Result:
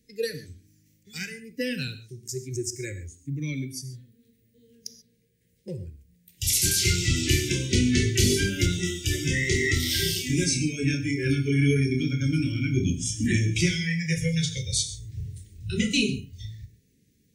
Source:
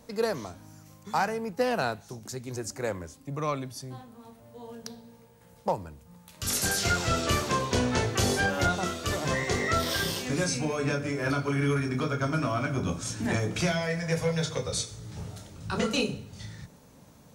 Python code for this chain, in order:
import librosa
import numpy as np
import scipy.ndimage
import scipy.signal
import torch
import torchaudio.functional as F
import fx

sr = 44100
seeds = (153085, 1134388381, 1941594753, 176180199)

y = scipy.signal.sosfilt(scipy.signal.ellip(3, 1.0, 40, [420.0, 1900.0], 'bandstop', fs=sr, output='sos'), x)
y = fx.noise_reduce_blind(y, sr, reduce_db=16)
y = fx.rev_gated(y, sr, seeds[0], gate_ms=160, shape='flat', drr_db=10.5)
y = y * librosa.db_to_amplitude(6.0)